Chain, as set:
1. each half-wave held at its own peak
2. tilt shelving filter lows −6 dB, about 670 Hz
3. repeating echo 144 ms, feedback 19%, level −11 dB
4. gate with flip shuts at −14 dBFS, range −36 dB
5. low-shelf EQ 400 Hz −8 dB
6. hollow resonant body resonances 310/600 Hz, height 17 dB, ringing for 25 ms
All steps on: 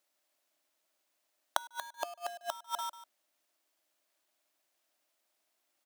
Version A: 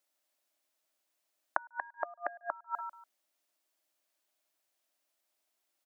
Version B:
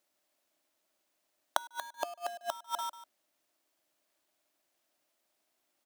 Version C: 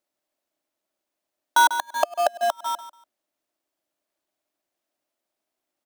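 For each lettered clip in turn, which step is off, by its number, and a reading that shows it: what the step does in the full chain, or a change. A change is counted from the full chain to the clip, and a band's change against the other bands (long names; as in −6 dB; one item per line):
1, distortion level −6 dB
5, 250 Hz band +4.5 dB
2, 4 kHz band −4.0 dB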